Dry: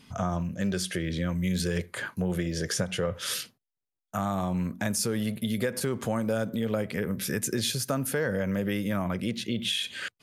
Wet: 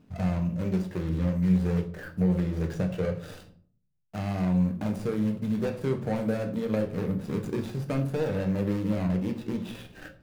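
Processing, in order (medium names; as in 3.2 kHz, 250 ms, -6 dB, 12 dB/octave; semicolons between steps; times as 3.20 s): median filter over 41 samples; de-hum 56.09 Hz, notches 6; reverberation RT60 0.50 s, pre-delay 7 ms, DRR 4 dB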